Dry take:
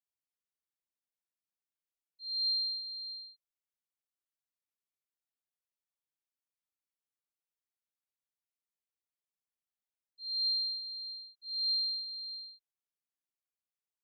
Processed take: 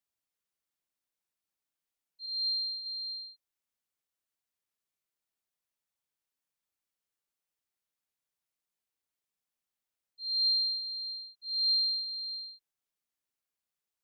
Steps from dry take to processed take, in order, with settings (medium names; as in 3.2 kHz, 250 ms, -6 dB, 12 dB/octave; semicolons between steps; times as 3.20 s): 2.24–2.86 s: flutter echo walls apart 3.1 m, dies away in 0.25 s; trim +4 dB